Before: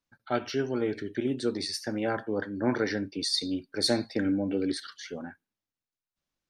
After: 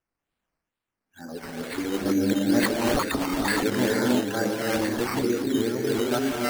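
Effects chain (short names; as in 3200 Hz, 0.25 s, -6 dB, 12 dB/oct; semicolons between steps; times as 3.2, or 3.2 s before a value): whole clip reversed; non-linear reverb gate 0.39 s rising, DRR -4.5 dB; decimation with a swept rate 10×, swing 60% 2.2 Hz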